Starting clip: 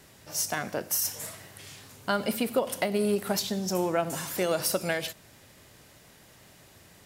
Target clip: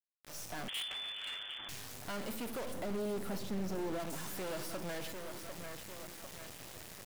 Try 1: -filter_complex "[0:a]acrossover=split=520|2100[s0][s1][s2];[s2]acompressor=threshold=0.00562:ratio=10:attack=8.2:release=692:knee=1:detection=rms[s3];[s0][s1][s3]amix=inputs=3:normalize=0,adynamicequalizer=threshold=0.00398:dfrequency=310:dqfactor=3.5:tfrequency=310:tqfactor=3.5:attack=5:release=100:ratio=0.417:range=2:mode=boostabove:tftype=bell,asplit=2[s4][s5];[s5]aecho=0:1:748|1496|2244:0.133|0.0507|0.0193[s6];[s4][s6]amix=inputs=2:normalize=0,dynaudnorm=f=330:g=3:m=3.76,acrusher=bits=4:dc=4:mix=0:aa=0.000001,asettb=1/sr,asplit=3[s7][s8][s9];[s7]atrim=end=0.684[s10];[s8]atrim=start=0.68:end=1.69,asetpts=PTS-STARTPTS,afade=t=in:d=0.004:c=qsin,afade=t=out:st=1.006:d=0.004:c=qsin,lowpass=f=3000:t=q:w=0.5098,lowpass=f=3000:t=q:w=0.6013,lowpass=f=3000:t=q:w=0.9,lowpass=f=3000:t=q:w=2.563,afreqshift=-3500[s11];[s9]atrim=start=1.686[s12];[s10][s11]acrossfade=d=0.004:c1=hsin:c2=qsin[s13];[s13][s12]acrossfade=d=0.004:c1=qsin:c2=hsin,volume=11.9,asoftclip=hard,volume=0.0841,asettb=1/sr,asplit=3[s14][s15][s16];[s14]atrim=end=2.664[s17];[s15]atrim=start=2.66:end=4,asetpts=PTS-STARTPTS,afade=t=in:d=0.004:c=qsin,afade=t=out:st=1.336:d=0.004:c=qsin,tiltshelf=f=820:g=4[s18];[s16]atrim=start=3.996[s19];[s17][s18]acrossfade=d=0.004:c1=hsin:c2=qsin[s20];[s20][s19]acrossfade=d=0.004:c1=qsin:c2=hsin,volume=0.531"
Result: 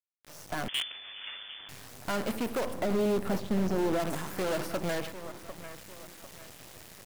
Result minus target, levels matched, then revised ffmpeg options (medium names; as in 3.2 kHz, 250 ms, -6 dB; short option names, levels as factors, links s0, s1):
compression: peak gain reduction +8.5 dB; overload inside the chain: distortion -5 dB
-filter_complex "[0:a]acrossover=split=520|2100[s0][s1][s2];[s2]acompressor=threshold=0.0168:ratio=10:attack=8.2:release=692:knee=1:detection=rms[s3];[s0][s1][s3]amix=inputs=3:normalize=0,adynamicequalizer=threshold=0.00398:dfrequency=310:dqfactor=3.5:tfrequency=310:tqfactor=3.5:attack=5:release=100:ratio=0.417:range=2:mode=boostabove:tftype=bell,asplit=2[s4][s5];[s5]aecho=0:1:748|1496|2244:0.133|0.0507|0.0193[s6];[s4][s6]amix=inputs=2:normalize=0,dynaudnorm=f=330:g=3:m=3.76,acrusher=bits=4:dc=4:mix=0:aa=0.000001,asettb=1/sr,asplit=3[s7][s8][s9];[s7]atrim=end=0.684[s10];[s8]atrim=start=0.68:end=1.69,asetpts=PTS-STARTPTS,afade=t=in:d=0.004:c=qsin,afade=t=out:st=1.006:d=0.004:c=qsin,lowpass=f=3000:t=q:w=0.5098,lowpass=f=3000:t=q:w=0.6013,lowpass=f=3000:t=q:w=0.9,lowpass=f=3000:t=q:w=2.563,afreqshift=-3500[s11];[s9]atrim=start=1.686[s12];[s10][s11]acrossfade=d=0.004:c1=hsin:c2=qsin[s13];[s13][s12]acrossfade=d=0.004:c1=qsin:c2=hsin,volume=37.6,asoftclip=hard,volume=0.0266,asettb=1/sr,asplit=3[s14][s15][s16];[s14]atrim=end=2.664[s17];[s15]atrim=start=2.66:end=4,asetpts=PTS-STARTPTS,afade=t=in:d=0.004:c=qsin,afade=t=out:st=1.336:d=0.004:c=qsin,tiltshelf=f=820:g=4[s18];[s16]atrim=start=3.996[s19];[s17][s18]acrossfade=d=0.004:c1=hsin:c2=qsin[s20];[s20][s19]acrossfade=d=0.004:c1=qsin:c2=hsin,volume=0.531"